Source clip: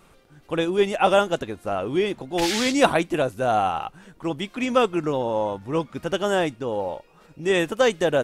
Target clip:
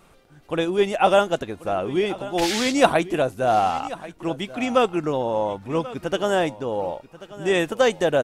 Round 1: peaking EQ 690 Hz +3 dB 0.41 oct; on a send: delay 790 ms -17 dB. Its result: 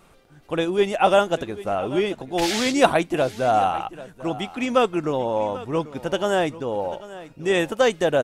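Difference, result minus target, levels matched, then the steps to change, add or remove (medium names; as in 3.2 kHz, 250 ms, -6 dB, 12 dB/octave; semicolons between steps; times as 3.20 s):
echo 296 ms early
change: delay 1086 ms -17 dB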